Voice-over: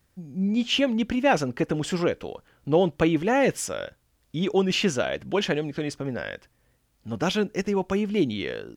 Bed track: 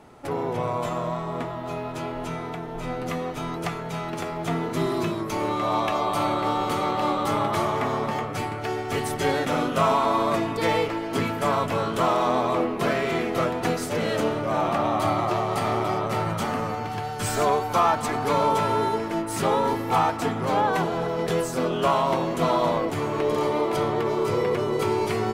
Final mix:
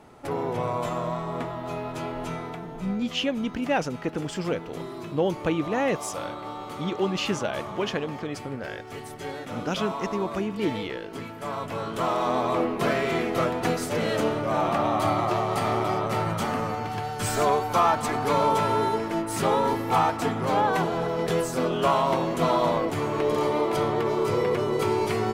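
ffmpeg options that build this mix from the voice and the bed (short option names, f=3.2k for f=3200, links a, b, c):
-filter_complex "[0:a]adelay=2450,volume=-4dB[a];[1:a]volume=10dB,afade=t=out:st=2.31:d=0.75:silence=0.298538,afade=t=in:st=11.34:d=1.34:silence=0.281838[b];[a][b]amix=inputs=2:normalize=0"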